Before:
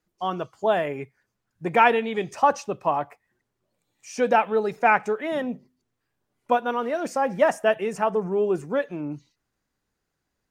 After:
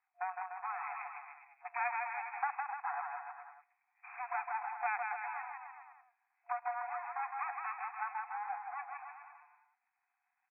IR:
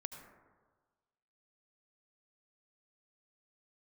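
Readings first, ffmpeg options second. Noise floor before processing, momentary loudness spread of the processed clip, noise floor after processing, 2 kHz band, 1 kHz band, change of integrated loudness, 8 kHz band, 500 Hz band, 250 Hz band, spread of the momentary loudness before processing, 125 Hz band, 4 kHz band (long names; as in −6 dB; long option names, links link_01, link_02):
−80 dBFS, 15 LU, −84 dBFS, −12.5 dB, −12.5 dB, −16.0 dB, below −35 dB, −28.0 dB, below −40 dB, 14 LU, below −40 dB, below −40 dB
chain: -filter_complex "[0:a]equalizer=frequency=1300:width_type=o:width=1.8:gain=-13,aeval=exprs='max(val(0),0)':channel_layout=same,acompressor=threshold=-48dB:ratio=2.5,afftfilt=real='re*between(b*sr/4096,710,2600)':imag='im*between(b*sr/4096,710,2600)':win_size=4096:overlap=0.75,asplit=2[link_01][link_02];[link_02]aecho=0:1:160|296|411.6|509.9|593.4:0.631|0.398|0.251|0.158|0.1[link_03];[link_01][link_03]amix=inputs=2:normalize=0,volume=12.5dB"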